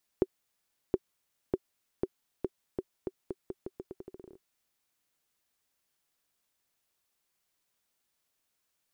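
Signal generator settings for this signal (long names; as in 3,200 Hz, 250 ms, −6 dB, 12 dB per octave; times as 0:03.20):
bouncing ball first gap 0.72 s, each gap 0.83, 378 Hz, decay 42 ms −12.5 dBFS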